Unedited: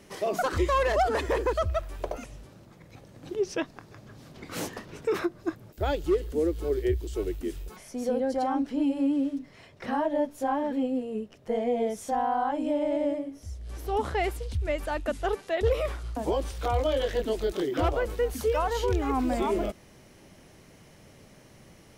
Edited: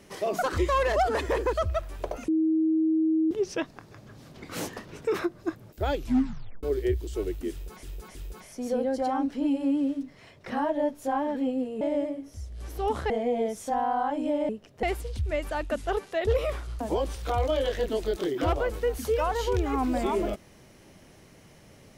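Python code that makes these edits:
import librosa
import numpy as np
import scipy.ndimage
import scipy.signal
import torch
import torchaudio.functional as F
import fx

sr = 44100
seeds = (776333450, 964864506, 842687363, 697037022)

y = fx.edit(x, sr, fx.bleep(start_s=2.28, length_s=1.03, hz=318.0, db=-20.5),
    fx.tape_stop(start_s=5.93, length_s=0.7),
    fx.repeat(start_s=7.51, length_s=0.32, count=3),
    fx.swap(start_s=11.17, length_s=0.34, other_s=12.9, other_length_s=1.29), tone=tone)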